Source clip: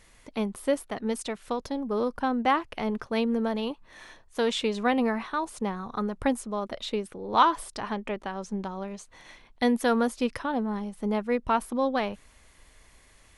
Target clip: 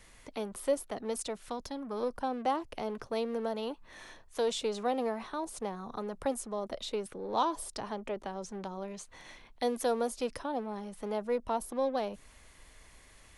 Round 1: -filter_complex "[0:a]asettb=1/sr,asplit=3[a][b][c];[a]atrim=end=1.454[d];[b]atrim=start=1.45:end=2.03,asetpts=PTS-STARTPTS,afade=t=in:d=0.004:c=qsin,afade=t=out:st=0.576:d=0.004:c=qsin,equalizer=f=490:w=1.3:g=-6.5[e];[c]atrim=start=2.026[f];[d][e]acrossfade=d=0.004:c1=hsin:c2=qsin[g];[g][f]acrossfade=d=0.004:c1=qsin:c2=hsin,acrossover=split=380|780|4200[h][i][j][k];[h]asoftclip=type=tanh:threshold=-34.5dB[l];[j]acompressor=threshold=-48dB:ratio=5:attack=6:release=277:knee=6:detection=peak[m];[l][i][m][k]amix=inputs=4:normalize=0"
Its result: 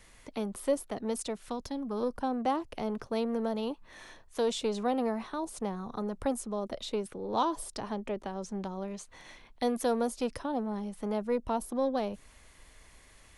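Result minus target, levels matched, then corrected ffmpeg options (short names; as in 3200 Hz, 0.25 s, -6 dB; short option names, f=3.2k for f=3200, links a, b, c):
soft clip: distortion -5 dB
-filter_complex "[0:a]asettb=1/sr,asplit=3[a][b][c];[a]atrim=end=1.454[d];[b]atrim=start=1.45:end=2.03,asetpts=PTS-STARTPTS,afade=t=in:d=0.004:c=qsin,afade=t=out:st=0.576:d=0.004:c=qsin,equalizer=f=490:w=1.3:g=-6.5[e];[c]atrim=start=2.026[f];[d][e]acrossfade=d=0.004:c1=hsin:c2=qsin[g];[g][f]acrossfade=d=0.004:c1=qsin:c2=hsin,acrossover=split=380|780|4200[h][i][j][k];[h]asoftclip=type=tanh:threshold=-44dB[l];[j]acompressor=threshold=-48dB:ratio=5:attack=6:release=277:knee=6:detection=peak[m];[l][i][m][k]amix=inputs=4:normalize=0"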